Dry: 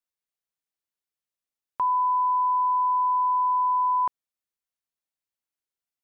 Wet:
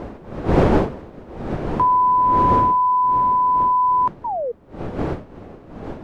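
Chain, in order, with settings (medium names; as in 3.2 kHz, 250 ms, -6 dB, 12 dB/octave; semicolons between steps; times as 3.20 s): wind noise 440 Hz -33 dBFS; gain riding 2 s; painted sound fall, 4.24–4.52 s, 450–1000 Hz -31 dBFS; trim +7.5 dB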